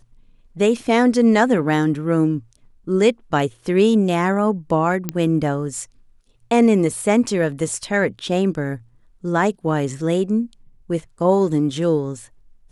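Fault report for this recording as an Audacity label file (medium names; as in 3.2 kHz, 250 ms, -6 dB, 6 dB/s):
5.090000	5.090000	pop -8 dBFS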